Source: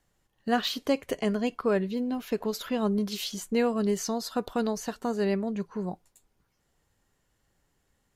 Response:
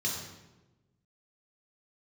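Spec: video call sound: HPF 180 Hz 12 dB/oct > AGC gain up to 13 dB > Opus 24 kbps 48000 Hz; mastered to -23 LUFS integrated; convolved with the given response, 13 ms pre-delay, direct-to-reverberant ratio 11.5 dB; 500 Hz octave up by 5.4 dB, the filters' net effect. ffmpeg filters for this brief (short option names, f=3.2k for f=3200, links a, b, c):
-filter_complex "[0:a]equalizer=f=500:t=o:g=6.5,asplit=2[a][b];[1:a]atrim=start_sample=2205,adelay=13[c];[b][c]afir=irnorm=-1:irlink=0,volume=-16.5dB[d];[a][d]amix=inputs=2:normalize=0,highpass=180,dynaudnorm=m=13dB,volume=3.5dB" -ar 48000 -c:a libopus -b:a 24k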